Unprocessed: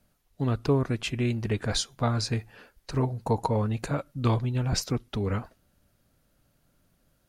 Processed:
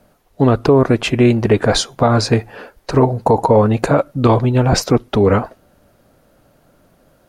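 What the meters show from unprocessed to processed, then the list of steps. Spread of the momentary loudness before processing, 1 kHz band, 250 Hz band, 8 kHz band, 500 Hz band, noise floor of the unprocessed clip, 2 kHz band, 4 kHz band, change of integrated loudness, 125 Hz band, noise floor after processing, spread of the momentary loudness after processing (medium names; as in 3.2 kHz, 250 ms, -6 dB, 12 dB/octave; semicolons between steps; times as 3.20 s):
6 LU, +15.5 dB, +14.5 dB, +9.5 dB, +17.5 dB, -70 dBFS, +13.5 dB, +10.5 dB, +13.5 dB, +10.5 dB, -56 dBFS, 5 LU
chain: peaking EQ 590 Hz +12 dB 2.9 oct; loudness maximiser +10 dB; trim -1 dB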